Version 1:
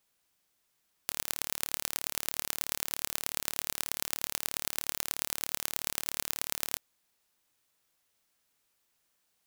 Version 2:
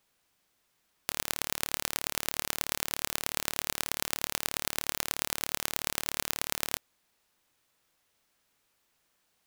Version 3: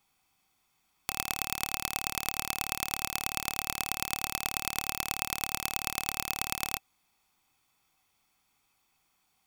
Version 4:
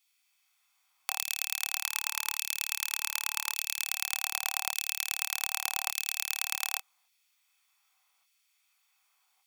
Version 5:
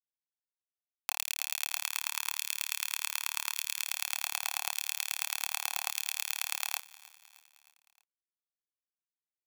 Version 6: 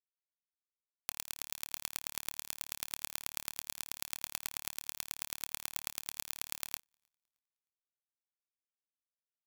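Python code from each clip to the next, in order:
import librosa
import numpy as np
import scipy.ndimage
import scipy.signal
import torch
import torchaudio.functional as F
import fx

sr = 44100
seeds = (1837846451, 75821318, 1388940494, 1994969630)

y1 = fx.high_shelf(x, sr, hz=4700.0, db=-6.0)
y1 = F.gain(torch.from_numpy(y1), 5.5).numpy()
y2 = y1 + 0.53 * np.pad(y1, (int(0.9 * sr / 1000.0), 0))[:len(y1)]
y2 = fx.small_body(y2, sr, hz=(770.0, 2600.0), ring_ms=45, db=11)
y2 = F.gain(torch.from_numpy(y2), -1.0).numpy()
y3 = fx.filter_lfo_highpass(y2, sr, shape='saw_down', hz=0.85, low_hz=760.0, high_hz=2700.0, q=0.88)
y3 = fx.spec_box(y3, sr, start_s=1.85, length_s=1.99, low_hz=420.0, high_hz=870.0, gain_db=-22)
y3 = fx.doubler(y3, sr, ms=26.0, db=-5)
y4 = np.where(np.abs(y3) >= 10.0 ** (-42.0 / 20.0), y3, 0.0)
y4 = fx.echo_feedback(y4, sr, ms=310, feedback_pct=56, wet_db=-20.5)
y4 = F.gain(torch.from_numpy(y4), -2.0).numpy()
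y5 = fx.power_curve(y4, sr, exponent=2.0)
y5 = F.gain(torch.from_numpy(y5), -2.0).numpy()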